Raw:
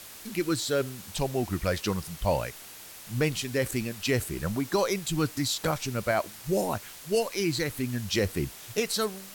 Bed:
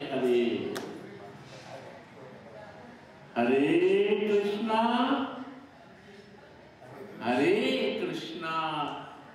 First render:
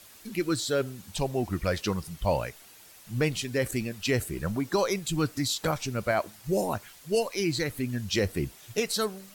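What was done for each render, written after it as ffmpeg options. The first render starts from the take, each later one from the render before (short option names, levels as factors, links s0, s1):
-af "afftdn=nr=8:nf=-46"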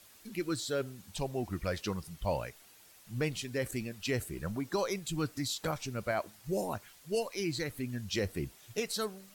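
-af "volume=0.473"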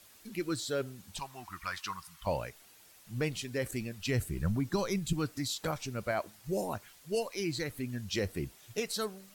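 -filter_complex "[0:a]asettb=1/sr,asplit=3[s0][s1][s2];[s0]atrim=end=1.194[s3];[s1]atrim=start=1.19:end=2.27,asetpts=PTS-STARTPTS,afade=t=in:d=0.004:c=qsin,afade=t=out:st=1.076:d=0.004:c=qsin,lowshelf=f=730:t=q:w=3:g=-13[s4];[s2]atrim=start=2.266[s5];[s3][s4]acrossfade=d=0.004:c1=hsin:c2=qsin[s6];[s6][s5]acrossfade=d=0.004:c1=qsin:c2=hsin,asettb=1/sr,asplit=3[s7][s8][s9];[s7]atrim=end=3.754[s10];[s8]atrim=start=3.75:end=5.13,asetpts=PTS-STARTPTS,afade=t=in:d=0.004:c=qsin,afade=t=out:st=1.376:d=0.004:c=qsin,asubboost=boost=9.5:cutoff=240[s11];[s9]atrim=start=5.126[s12];[s10][s11]acrossfade=d=0.004:c1=hsin:c2=qsin[s13];[s13][s12]acrossfade=d=0.004:c1=qsin:c2=hsin"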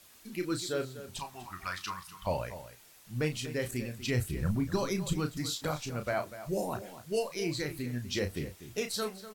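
-filter_complex "[0:a]asplit=2[s0][s1];[s1]adelay=33,volume=0.422[s2];[s0][s2]amix=inputs=2:normalize=0,asplit=2[s3][s4];[s4]adelay=244.9,volume=0.224,highshelf=f=4000:g=-5.51[s5];[s3][s5]amix=inputs=2:normalize=0"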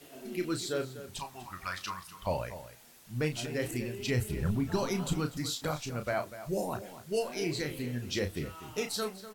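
-filter_complex "[1:a]volume=0.119[s0];[0:a][s0]amix=inputs=2:normalize=0"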